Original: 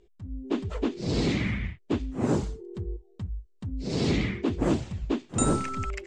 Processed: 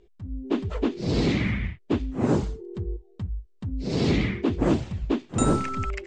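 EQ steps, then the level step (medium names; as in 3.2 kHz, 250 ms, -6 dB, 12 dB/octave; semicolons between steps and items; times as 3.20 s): distance through air 60 m; +3.0 dB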